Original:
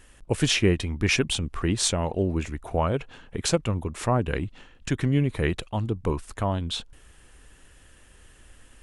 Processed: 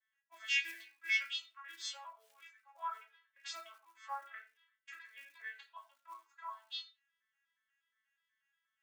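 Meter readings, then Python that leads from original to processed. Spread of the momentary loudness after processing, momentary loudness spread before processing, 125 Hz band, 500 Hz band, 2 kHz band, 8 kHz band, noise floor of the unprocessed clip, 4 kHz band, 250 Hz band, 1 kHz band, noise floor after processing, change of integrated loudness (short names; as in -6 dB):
23 LU, 9 LU, under -40 dB, -36.5 dB, -7.0 dB, -21.0 dB, -54 dBFS, -12.5 dB, under -40 dB, -13.0 dB, under -85 dBFS, -13.5 dB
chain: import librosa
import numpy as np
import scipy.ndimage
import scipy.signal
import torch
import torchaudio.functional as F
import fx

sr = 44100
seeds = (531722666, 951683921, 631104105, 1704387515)

y = fx.vocoder_arp(x, sr, chord='major triad', root=57, every_ms=120)
y = fx.room_shoebox(y, sr, seeds[0], volume_m3=55.0, walls='mixed', distance_m=0.98)
y = fx.quant_float(y, sr, bits=4)
y = scipy.signal.sosfilt(scipy.signal.butter(4, 1200.0, 'highpass', fs=sr, output='sos'), y)
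y = fx.spectral_expand(y, sr, expansion=1.5)
y = F.gain(torch.from_numpy(y), -3.0).numpy()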